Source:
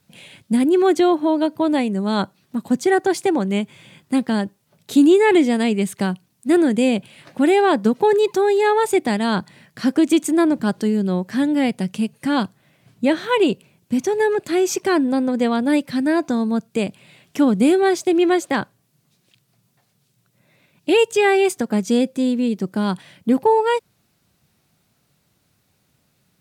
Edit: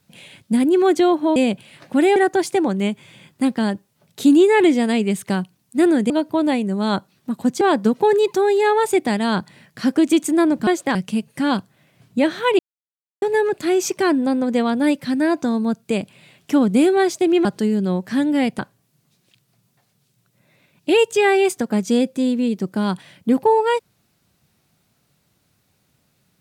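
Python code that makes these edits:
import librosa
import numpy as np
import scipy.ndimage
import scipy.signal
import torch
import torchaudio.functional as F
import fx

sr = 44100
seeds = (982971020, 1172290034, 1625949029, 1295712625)

y = fx.edit(x, sr, fx.swap(start_s=1.36, length_s=1.51, other_s=6.81, other_length_s=0.8),
    fx.swap(start_s=10.67, length_s=1.14, other_s=18.31, other_length_s=0.28),
    fx.silence(start_s=13.45, length_s=0.63), tone=tone)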